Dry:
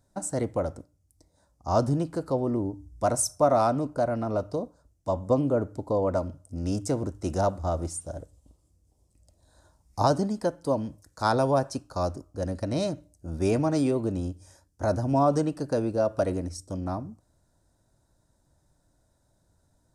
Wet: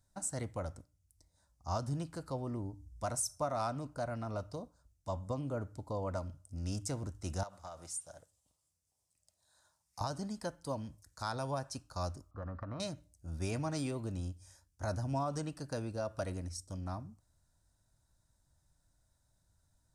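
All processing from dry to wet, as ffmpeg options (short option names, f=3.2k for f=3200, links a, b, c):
-filter_complex "[0:a]asettb=1/sr,asplit=3[a][b][c];[a]atrim=end=7.434[d];[b]atrim=start=7.43:end=10.01,asetpts=PTS-STARTPTS,afade=t=in:d=0.004:c=qsin,afade=t=out:st=2.576:d=0.004:c=qsin,highpass=220,equalizer=f=280:w=1.1:g=-9.5,acompressor=threshold=-31dB:ratio=12:attack=3.2:release=140:knee=1:detection=peak[e];[c]atrim=start=10.006[f];[d][e]acrossfade=d=0.004:c1=hsin:c2=qsin[g];[g][f]acrossfade=d=0.004:c1=qsin:c2=hsin,asettb=1/sr,asplit=3[h][i][j];[h]atrim=end=12.314[k];[i]atrim=start=12.31:end=12.8,asetpts=PTS-STARTPTS,afade=t=in:d=0.004:c=qsin,afade=t=out:st=0.486:d=0.004:c=qsin,lowpass=f=1.2k:t=q:w=11,acompressor=threshold=-28dB:ratio=4:attack=3.2:release=140:knee=1:detection=peak[l];[j]atrim=start=12.796[m];[k][l]acrossfade=d=0.004:c1=hsin:c2=qsin[n];[n][m]acrossfade=d=0.004:c1=qsin:c2=hsin,equalizer=f=390:w=0.55:g=-12,alimiter=limit=-21dB:level=0:latency=1:release=220,volume=-3.5dB"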